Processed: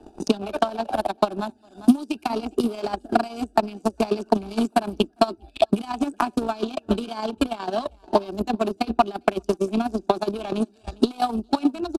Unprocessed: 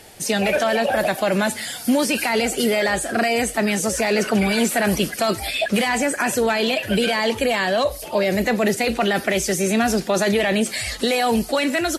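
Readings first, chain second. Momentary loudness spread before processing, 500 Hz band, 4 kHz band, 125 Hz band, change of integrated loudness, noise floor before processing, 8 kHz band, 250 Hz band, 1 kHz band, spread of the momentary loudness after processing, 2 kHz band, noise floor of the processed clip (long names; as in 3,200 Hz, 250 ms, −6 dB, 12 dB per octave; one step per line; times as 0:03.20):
3 LU, −4.5 dB, −10.0 dB, −7.0 dB, −5.0 dB, −35 dBFS, −18.5 dB, −2.0 dB, −1.0 dB, 5 LU, −15.5 dB, −57 dBFS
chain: adaptive Wiener filter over 41 samples
parametric band 140 Hz −12 dB 0.53 octaves
phaser with its sweep stopped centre 520 Hz, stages 6
on a send: single-tap delay 403 ms −18.5 dB
on the sum: transient designer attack +10 dB, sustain −10 dB
low-pass filter 8,900 Hz 12 dB per octave
transient designer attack +8 dB, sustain −1 dB
dynamic equaliser 6,800 Hz, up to −6 dB, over −48 dBFS, Q 2.4
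multiband upward and downward compressor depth 40%
level −5 dB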